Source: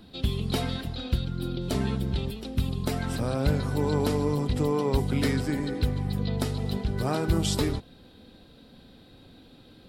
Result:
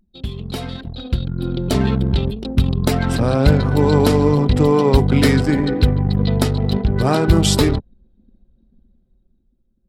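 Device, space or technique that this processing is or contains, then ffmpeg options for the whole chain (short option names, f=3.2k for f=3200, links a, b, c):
voice memo with heavy noise removal: -af "anlmdn=2.51,dynaudnorm=f=190:g=13:m=16dB"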